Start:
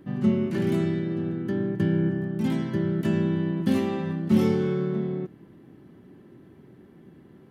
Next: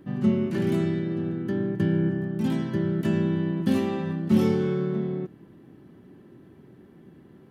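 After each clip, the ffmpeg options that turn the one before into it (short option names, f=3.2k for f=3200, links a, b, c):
-af "bandreject=f=2.1k:w=29"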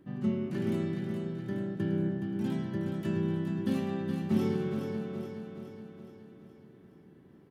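-af "aecho=1:1:420|840|1260|1680|2100|2520|2940:0.473|0.256|0.138|0.0745|0.0402|0.0217|0.0117,volume=-8dB"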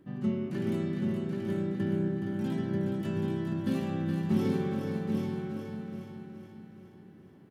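-af "aecho=1:1:780|1560|2340:0.596|0.0953|0.0152"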